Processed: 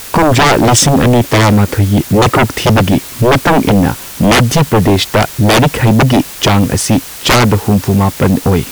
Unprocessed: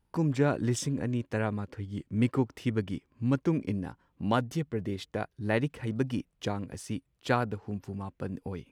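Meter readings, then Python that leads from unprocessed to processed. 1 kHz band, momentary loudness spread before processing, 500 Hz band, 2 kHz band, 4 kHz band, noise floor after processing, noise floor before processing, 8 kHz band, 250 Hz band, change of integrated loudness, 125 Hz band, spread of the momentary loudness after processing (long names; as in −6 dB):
+24.5 dB, 10 LU, +21.0 dB, +23.5 dB, +29.0 dB, −28 dBFS, −75 dBFS, +28.5 dB, +20.0 dB, +21.5 dB, +21.5 dB, 4 LU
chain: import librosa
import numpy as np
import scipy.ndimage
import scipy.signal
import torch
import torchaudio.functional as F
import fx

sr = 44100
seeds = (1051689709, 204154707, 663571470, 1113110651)

y = fx.dmg_noise_colour(x, sr, seeds[0], colour='white', level_db=-57.0)
y = fx.fold_sine(y, sr, drive_db=18, ceiling_db=-11.5)
y = y * librosa.db_to_amplitude(7.5)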